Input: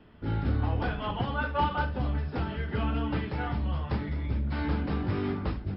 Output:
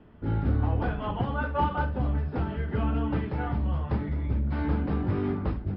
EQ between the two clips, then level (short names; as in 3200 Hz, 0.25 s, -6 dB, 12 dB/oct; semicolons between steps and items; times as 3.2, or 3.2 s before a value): LPF 1200 Hz 6 dB/oct; +2.5 dB